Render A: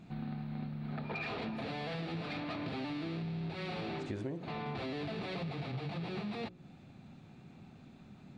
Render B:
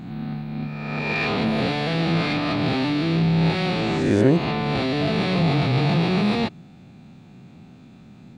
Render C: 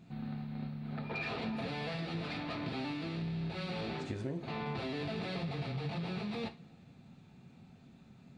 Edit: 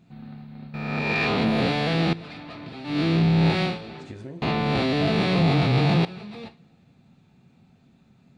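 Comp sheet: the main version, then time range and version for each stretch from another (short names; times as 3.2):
C
0.74–2.13 from B
2.92–3.71 from B, crossfade 0.16 s
4.42–6.05 from B
not used: A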